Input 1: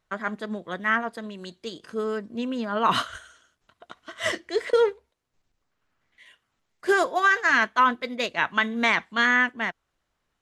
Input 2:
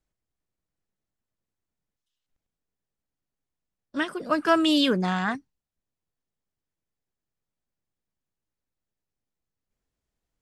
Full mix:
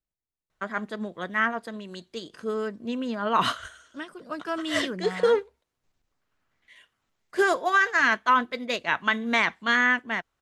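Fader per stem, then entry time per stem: −1.0, −10.0 decibels; 0.50, 0.00 seconds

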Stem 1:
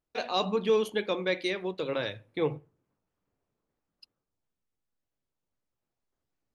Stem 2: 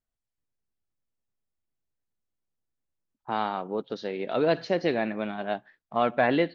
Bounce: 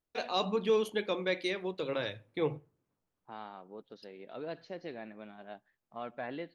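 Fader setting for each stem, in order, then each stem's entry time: −3.0, −17.0 decibels; 0.00, 0.00 seconds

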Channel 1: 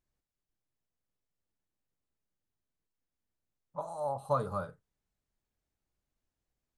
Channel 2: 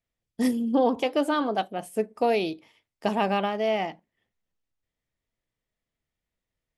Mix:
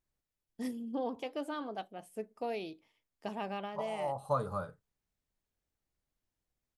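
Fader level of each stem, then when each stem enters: −1.5, −14.0 decibels; 0.00, 0.20 seconds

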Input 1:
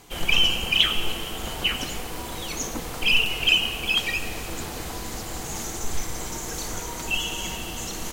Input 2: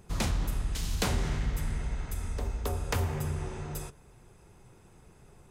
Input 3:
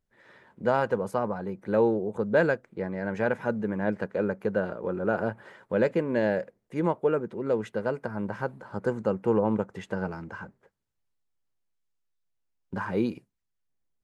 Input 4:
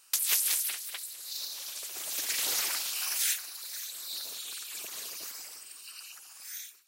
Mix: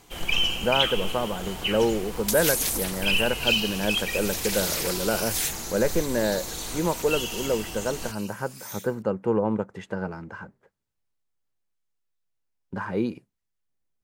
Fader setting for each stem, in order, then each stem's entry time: −4.0, −13.0, +0.5, +1.5 decibels; 0.00, 1.60, 0.00, 2.15 seconds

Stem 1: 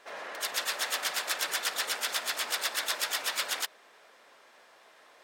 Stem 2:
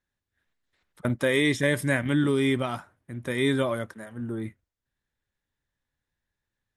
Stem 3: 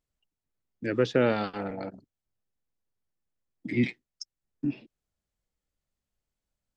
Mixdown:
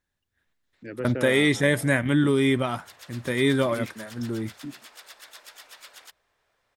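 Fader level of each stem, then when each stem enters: −15.5, +2.5, −8.5 decibels; 2.45, 0.00, 0.00 seconds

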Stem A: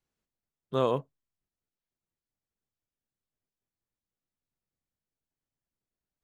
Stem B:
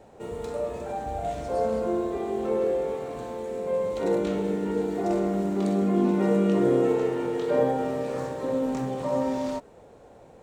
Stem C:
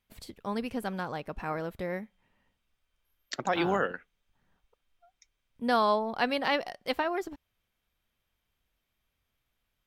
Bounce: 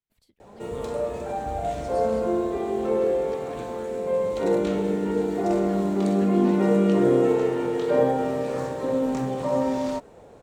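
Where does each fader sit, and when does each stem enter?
−14.5, +2.5, −19.0 decibels; 0.00, 0.40, 0.00 seconds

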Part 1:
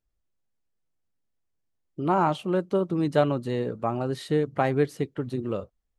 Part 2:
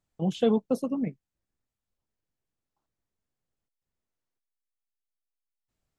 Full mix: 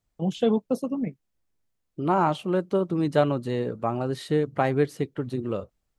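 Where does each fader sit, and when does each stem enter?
+0.5, +1.0 decibels; 0.00, 0.00 seconds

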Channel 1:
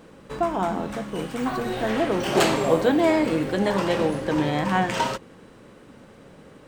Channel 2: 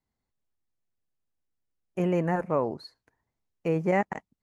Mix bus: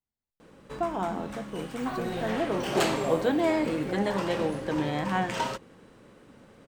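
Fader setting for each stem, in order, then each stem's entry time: −5.5, −11.0 decibels; 0.40, 0.00 seconds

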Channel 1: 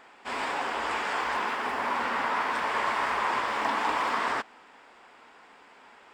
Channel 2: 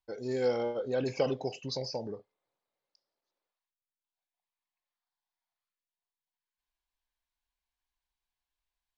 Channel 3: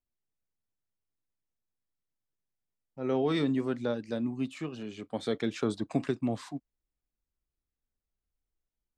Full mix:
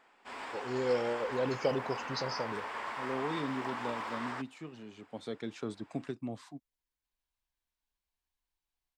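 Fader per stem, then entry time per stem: −11.5, −1.5, −8.5 decibels; 0.00, 0.45, 0.00 seconds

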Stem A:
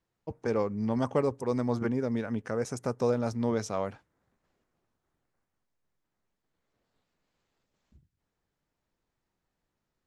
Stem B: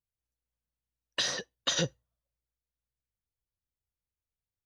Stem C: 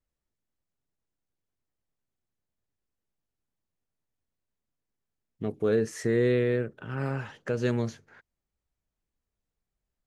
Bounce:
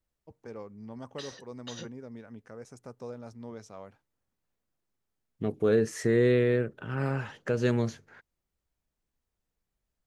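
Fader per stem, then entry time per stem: −14.0, −14.5, +1.0 decibels; 0.00, 0.00, 0.00 seconds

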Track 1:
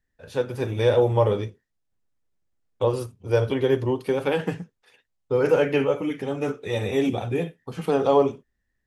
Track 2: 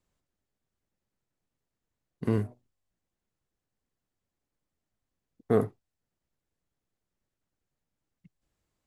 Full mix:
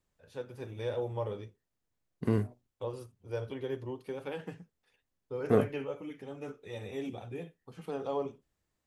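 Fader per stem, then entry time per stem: −15.5, −1.5 decibels; 0.00, 0.00 seconds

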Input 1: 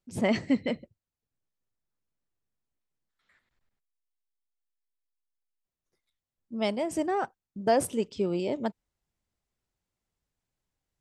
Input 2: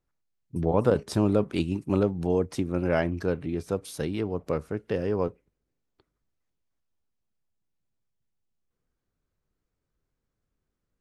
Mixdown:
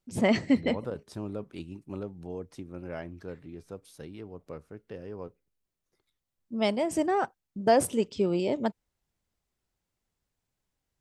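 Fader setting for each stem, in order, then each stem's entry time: +2.0, −13.5 decibels; 0.00, 0.00 seconds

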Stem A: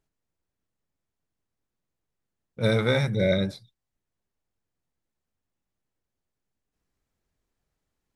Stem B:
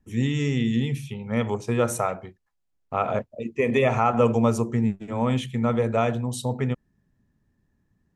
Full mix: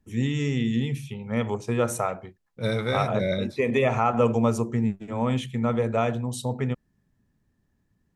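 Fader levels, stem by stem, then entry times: −3.5, −1.5 decibels; 0.00, 0.00 seconds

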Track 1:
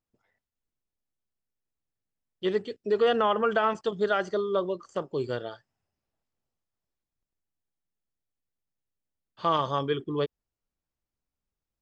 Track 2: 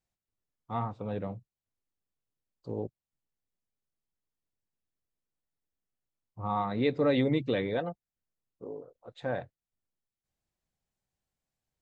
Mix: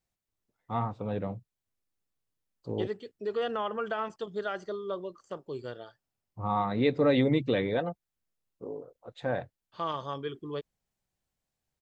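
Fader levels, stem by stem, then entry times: −8.0, +2.0 decibels; 0.35, 0.00 seconds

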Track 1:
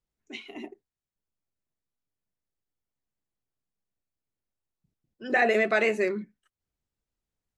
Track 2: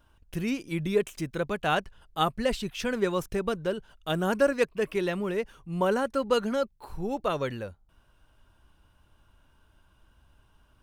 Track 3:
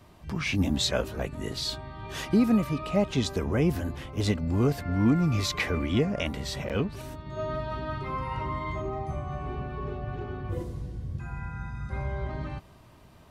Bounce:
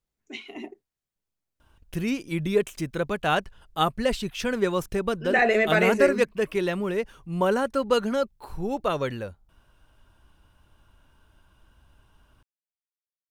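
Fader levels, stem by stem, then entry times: +2.0 dB, +2.5 dB, muted; 0.00 s, 1.60 s, muted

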